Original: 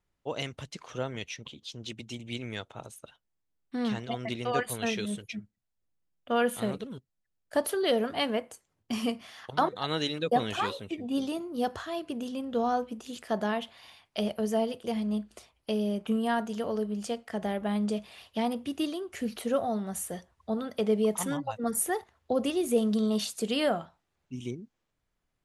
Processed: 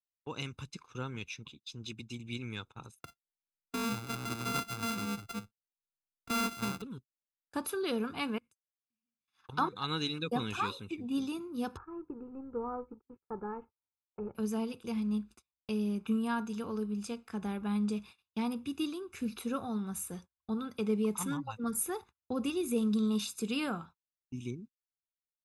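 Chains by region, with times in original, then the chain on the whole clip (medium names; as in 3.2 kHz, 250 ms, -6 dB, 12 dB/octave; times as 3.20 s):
3.00–6.82 s: sorted samples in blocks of 64 samples + three bands compressed up and down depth 40%
8.38–9.28 s: amplifier tone stack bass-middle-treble 6-0-2 + waveshaping leveller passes 1 + compression 4:1, threshold -59 dBFS
11.77–14.35 s: companding laws mixed up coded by A + Gaussian low-pass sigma 6.9 samples + comb 2.3 ms, depth 61%
whole clip: gate -45 dBFS, range -33 dB; comb 0.8 ms, depth 81%; trim -6 dB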